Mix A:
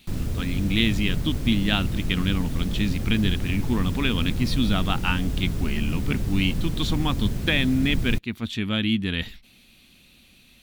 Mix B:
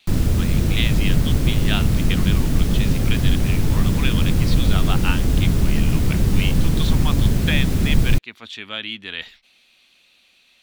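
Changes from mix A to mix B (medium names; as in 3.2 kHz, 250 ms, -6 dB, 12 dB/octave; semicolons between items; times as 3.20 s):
speech: add three-band isolator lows -20 dB, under 450 Hz, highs -12 dB, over 7.8 kHz; background +9.5 dB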